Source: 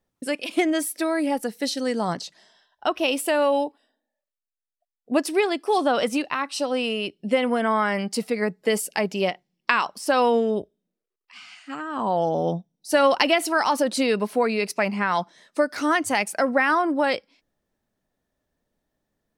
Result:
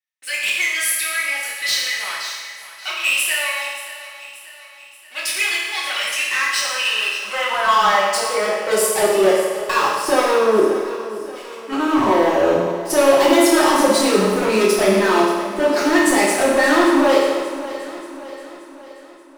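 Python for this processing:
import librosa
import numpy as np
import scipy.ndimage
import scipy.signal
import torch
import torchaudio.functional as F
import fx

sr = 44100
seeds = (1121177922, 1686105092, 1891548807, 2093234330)

p1 = fx.leveller(x, sr, passes=3)
p2 = fx.level_steps(p1, sr, step_db=21)
p3 = p1 + F.gain(torch.from_numpy(p2), 0.5).numpy()
p4 = fx.filter_sweep_highpass(p3, sr, from_hz=2200.0, to_hz=300.0, start_s=6.14, end_s=9.82, q=2.8)
p5 = np.clip(p4, -10.0 ** (-7.5 / 20.0), 10.0 ** (-7.5 / 20.0))
p6 = p5 + fx.echo_feedback(p5, sr, ms=580, feedback_pct=52, wet_db=-14.5, dry=0)
p7 = fx.rev_fdn(p6, sr, rt60_s=1.4, lf_ratio=0.75, hf_ratio=0.9, size_ms=16.0, drr_db=-8.0)
y = F.gain(torch.from_numpy(p7), -13.0).numpy()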